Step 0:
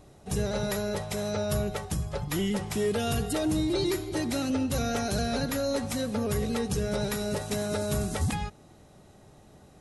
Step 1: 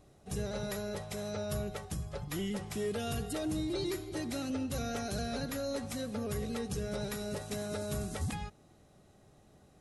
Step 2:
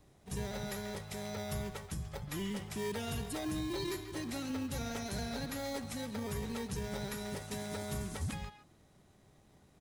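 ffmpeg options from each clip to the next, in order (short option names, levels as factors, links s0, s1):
-af "bandreject=f=910:w=14,volume=0.422"
-filter_complex "[0:a]acrossover=split=320|690|5600[s0][s1][s2][s3];[s1]acrusher=samples=32:mix=1:aa=0.000001[s4];[s2]aecho=1:1:137:0.376[s5];[s0][s4][s5][s3]amix=inputs=4:normalize=0,volume=0.794"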